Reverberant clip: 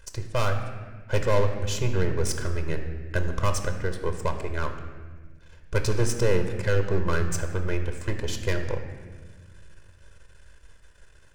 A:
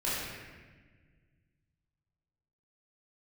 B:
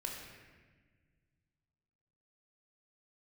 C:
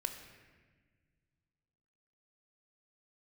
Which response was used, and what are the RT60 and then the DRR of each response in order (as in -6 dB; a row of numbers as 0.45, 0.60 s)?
C; 1.4, 1.5, 1.5 s; -9.5, -0.5, 6.0 dB